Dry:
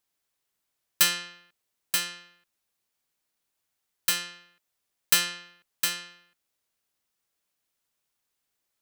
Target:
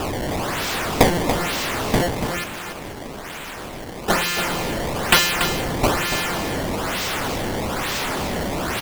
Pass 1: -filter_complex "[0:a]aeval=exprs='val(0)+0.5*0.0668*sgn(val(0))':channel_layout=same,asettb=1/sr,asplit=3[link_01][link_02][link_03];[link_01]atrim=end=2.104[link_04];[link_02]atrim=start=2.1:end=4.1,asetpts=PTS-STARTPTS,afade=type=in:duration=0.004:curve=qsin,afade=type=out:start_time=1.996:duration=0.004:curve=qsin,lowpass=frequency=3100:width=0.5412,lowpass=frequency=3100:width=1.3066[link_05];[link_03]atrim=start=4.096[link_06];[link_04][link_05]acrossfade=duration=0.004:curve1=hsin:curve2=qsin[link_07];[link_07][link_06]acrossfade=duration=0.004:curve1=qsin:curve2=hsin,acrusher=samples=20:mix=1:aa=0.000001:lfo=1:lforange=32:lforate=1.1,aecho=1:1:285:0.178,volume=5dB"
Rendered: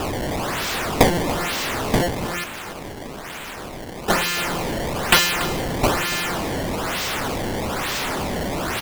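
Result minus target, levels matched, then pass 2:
echo-to-direct −6.5 dB
-filter_complex "[0:a]aeval=exprs='val(0)+0.5*0.0668*sgn(val(0))':channel_layout=same,asettb=1/sr,asplit=3[link_01][link_02][link_03];[link_01]atrim=end=2.104[link_04];[link_02]atrim=start=2.1:end=4.1,asetpts=PTS-STARTPTS,afade=type=in:duration=0.004:curve=qsin,afade=type=out:start_time=1.996:duration=0.004:curve=qsin,lowpass=frequency=3100:width=0.5412,lowpass=frequency=3100:width=1.3066[link_05];[link_03]atrim=start=4.096[link_06];[link_04][link_05]acrossfade=duration=0.004:curve1=hsin:curve2=qsin[link_07];[link_07][link_06]acrossfade=duration=0.004:curve1=qsin:curve2=hsin,acrusher=samples=20:mix=1:aa=0.000001:lfo=1:lforange=32:lforate=1.1,aecho=1:1:285:0.376,volume=5dB"

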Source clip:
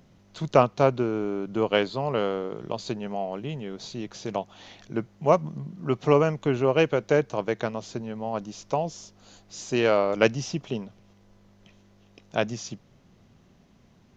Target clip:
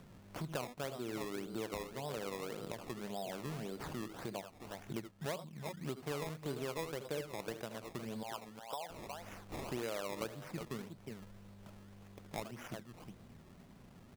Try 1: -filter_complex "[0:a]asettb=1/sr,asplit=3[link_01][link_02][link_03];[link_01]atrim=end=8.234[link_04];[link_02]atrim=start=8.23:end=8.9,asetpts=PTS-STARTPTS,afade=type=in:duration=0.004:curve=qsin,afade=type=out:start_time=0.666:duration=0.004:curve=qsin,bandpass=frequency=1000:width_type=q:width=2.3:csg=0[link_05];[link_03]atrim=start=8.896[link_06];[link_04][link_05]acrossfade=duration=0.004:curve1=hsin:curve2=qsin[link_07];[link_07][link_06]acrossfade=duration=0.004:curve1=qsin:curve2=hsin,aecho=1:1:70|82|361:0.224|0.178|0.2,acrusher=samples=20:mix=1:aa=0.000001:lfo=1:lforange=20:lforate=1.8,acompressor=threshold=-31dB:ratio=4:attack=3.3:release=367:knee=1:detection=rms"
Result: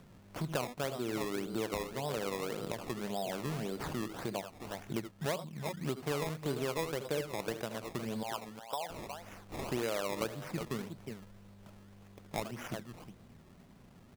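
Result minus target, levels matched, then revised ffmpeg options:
downward compressor: peak gain reduction −5.5 dB
-filter_complex "[0:a]asettb=1/sr,asplit=3[link_01][link_02][link_03];[link_01]atrim=end=8.234[link_04];[link_02]atrim=start=8.23:end=8.9,asetpts=PTS-STARTPTS,afade=type=in:duration=0.004:curve=qsin,afade=type=out:start_time=0.666:duration=0.004:curve=qsin,bandpass=frequency=1000:width_type=q:width=2.3:csg=0[link_05];[link_03]atrim=start=8.896[link_06];[link_04][link_05]acrossfade=duration=0.004:curve1=hsin:curve2=qsin[link_07];[link_07][link_06]acrossfade=duration=0.004:curve1=qsin:curve2=hsin,aecho=1:1:70|82|361:0.224|0.178|0.2,acrusher=samples=20:mix=1:aa=0.000001:lfo=1:lforange=20:lforate=1.8,acompressor=threshold=-38dB:ratio=4:attack=3.3:release=367:knee=1:detection=rms"

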